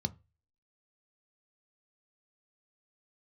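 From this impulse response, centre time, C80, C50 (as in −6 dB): 3 ms, 31.0 dB, 24.5 dB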